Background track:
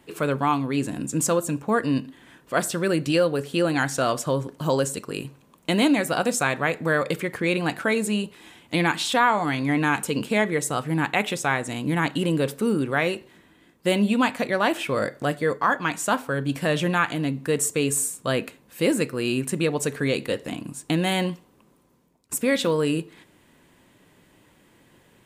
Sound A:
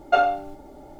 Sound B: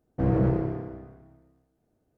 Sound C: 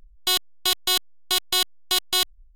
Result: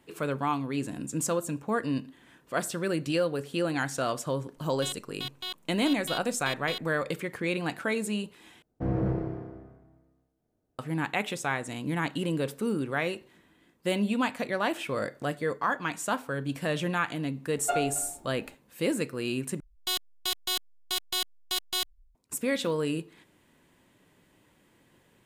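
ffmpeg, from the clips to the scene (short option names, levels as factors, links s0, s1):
-filter_complex "[3:a]asplit=2[s0][s1];[0:a]volume=0.473[s2];[s0]highshelf=f=4800:t=q:w=1.5:g=-9.5[s3];[1:a]asplit=2[s4][s5];[s5]adelay=268.2,volume=0.126,highshelf=f=4000:g=-6.04[s6];[s4][s6]amix=inputs=2:normalize=0[s7];[s2]asplit=3[s8][s9][s10];[s8]atrim=end=8.624[s11];[2:a]atrim=end=2.17,asetpts=PTS-STARTPTS,volume=0.562[s12];[s9]atrim=start=10.786:end=19.604[s13];[s1]atrim=end=2.55,asetpts=PTS-STARTPTS,volume=0.376[s14];[s10]atrim=start=22.146[s15];[s3]atrim=end=2.55,asetpts=PTS-STARTPTS,volume=0.168,afade=t=in:d=0.004:c=hsin,afade=t=out:st=2.546:d=0.004:c=hsin,adelay=4550[s16];[s7]atrim=end=0.99,asetpts=PTS-STARTPTS,volume=0.299,afade=t=in:d=0.004:c=hsin,afade=t=out:st=0.986:d=0.004:c=hsin,adelay=17560[s17];[s11][s12]acrossfade=d=0.004:c1=hsin:c2=hsin[s18];[s18][s13]acrossfade=d=0.004:c1=hsin:c2=hsin[s19];[s19][s14]acrossfade=d=0.004:c1=hsin:c2=hsin[s20];[s20][s15]acrossfade=d=0.004:c1=hsin:c2=hsin[s21];[s21][s16][s17]amix=inputs=3:normalize=0"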